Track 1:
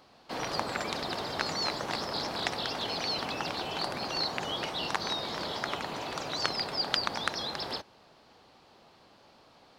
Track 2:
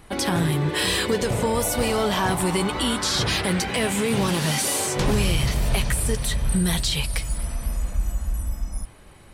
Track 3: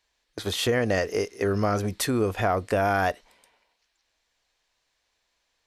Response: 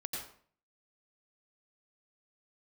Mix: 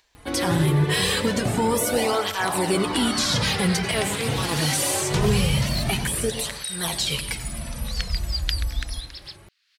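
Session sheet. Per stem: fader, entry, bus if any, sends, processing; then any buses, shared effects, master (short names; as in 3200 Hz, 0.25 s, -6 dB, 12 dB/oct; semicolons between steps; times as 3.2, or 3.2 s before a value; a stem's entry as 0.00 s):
+3.0 dB, 1.55 s, no send, steep high-pass 1700 Hz 36 dB/oct; upward expander 1.5:1, over -47 dBFS
+1.0 dB, 0.15 s, send -8.5 dB, tape flanging out of phase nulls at 0.23 Hz, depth 5.4 ms
-16.0 dB, 0.00 s, no send, sustainer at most 34 dB/s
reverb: on, RT60 0.50 s, pre-delay 83 ms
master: upward compressor, threshold -47 dBFS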